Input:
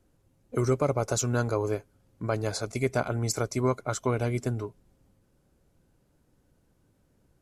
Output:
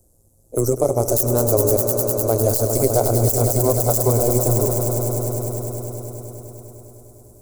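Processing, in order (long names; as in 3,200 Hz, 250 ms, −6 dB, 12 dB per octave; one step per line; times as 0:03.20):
stylus tracing distortion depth 0.3 ms
speech leveller
drawn EQ curve 100 Hz 0 dB, 210 Hz −16 dB, 350 Hz −2 dB, 630 Hz 0 dB, 1,800 Hz −23 dB, 3,100 Hz −18 dB, 7,700 Hz +11 dB
amplitude modulation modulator 120 Hz, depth 55%
echo that builds up and dies away 101 ms, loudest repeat 5, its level −11.5 dB
boost into a limiter +20 dB
level −4.5 dB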